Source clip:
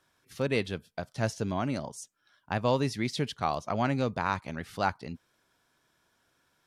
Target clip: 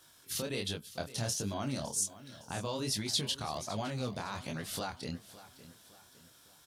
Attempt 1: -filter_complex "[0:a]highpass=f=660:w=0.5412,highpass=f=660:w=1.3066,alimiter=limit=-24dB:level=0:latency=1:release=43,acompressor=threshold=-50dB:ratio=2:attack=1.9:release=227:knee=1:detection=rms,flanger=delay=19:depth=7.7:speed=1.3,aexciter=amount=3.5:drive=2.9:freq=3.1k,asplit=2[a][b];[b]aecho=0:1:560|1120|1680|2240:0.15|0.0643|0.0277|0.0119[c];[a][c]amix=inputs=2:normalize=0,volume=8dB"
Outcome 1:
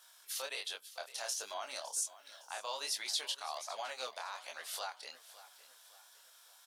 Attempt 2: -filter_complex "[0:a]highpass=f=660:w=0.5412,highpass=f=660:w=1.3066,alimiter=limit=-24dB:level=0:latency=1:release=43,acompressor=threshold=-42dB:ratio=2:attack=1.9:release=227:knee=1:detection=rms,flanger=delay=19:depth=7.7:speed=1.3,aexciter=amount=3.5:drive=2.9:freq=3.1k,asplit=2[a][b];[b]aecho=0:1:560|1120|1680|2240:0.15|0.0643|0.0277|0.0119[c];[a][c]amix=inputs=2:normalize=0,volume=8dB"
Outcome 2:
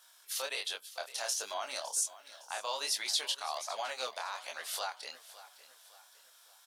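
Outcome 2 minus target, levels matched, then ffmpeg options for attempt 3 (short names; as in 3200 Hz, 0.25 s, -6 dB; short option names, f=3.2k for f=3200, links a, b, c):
500 Hz band -3.0 dB
-filter_complex "[0:a]alimiter=limit=-24dB:level=0:latency=1:release=43,acompressor=threshold=-42dB:ratio=2:attack=1.9:release=227:knee=1:detection=rms,flanger=delay=19:depth=7.7:speed=1.3,aexciter=amount=3.5:drive=2.9:freq=3.1k,asplit=2[a][b];[b]aecho=0:1:560|1120|1680|2240:0.15|0.0643|0.0277|0.0119[c];[a][c]amix=inputs=2:normalize=0,volume=8dB"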